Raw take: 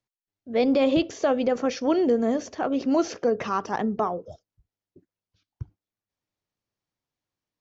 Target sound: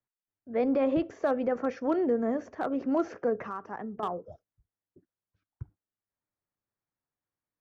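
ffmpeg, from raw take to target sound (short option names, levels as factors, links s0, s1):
-filter_complex "[0:a]highshelf=f=2500:t=q:w=1.5:g=-13,asettb=1/sr,asplit=3[s0][s1][s2];[s0]atrim=end=3.354[s3];[s1]atrim=start=3.35:end=4.03,asetpts=PTS-STARTPTS,afade=t=in:d=0.004:c=qsin,afade=t=out:st=0.676:d=0.004:c=qsin,acompressor=threshold=0.0251:ratio=2.5[s4];[s2]atrim=start=4.026[s5];[s3][s4]acrossfade=d=0.004:c1=hsin:c2=qsin[s6];[s6][s5]acrossfade=d=0.004:c1=qsin:c2=hsin,acrossover=split=460|820[s7][s8][s9];[s9]volume=17.8,asoftclip=hard,volume=0.0562[s10];[s7][s8][s10]amix=inputs=3:normalize=0,volume=0.531"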